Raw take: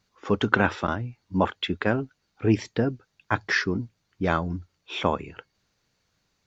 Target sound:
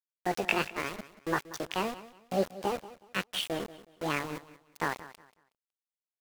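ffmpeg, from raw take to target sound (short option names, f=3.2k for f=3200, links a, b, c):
-filter_complex "[0:a]asplit=2[a][b];[b]adynamicsmooth=sensitivity=1:basefreq=1.9k,volume=-2.5dB[c];[a][c]amix=inputs=2:normalize=0,asetrate=74167,aresample=44100,atempo=0.594604,flanger=delay=6.4:depth=7.8:regen=-71:speed=1.4:shape=triangular,aeval=exprs='val(0)*gte(abs(val(0)),0.0447)':c=same,asplit=2[d][e];[e]aecho=0:1:192|384|576:0.15|0.0404|0.0109[f];[d][f]amix=inputs=2:normalize=0,asetrate=45938,aresample=44100,volume=-7.5dB"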